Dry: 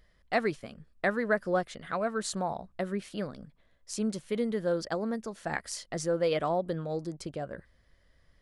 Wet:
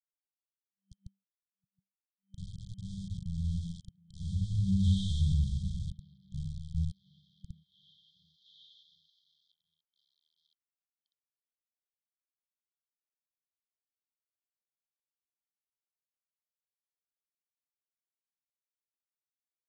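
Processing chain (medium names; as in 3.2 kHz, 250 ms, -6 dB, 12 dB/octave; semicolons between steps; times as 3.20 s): Doppler pass-by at 2.05 s, 29 m/s, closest 2 m; Schroeder reverb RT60 0.45 s, combs from 33 ms, DRR -6.5 dB; transient shaper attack -7 dB, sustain +4 dB; hum notches 60/120/180/240/300/360/420/480/540 Hz; waveshaping leveller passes 3; bit crusher 5-bit; treble shelf 9.1 kHz -7.5 dB; on a send: repeats whose band climbs or falls 309 ms, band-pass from 1.1 kHz, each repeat 0.7 oct, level -2 dB; on the sum: FFT band-reject 460–7300 Hz; tone controls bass +4 dB, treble -12 dB; speed mistake 78 rpm record played at 33 rpm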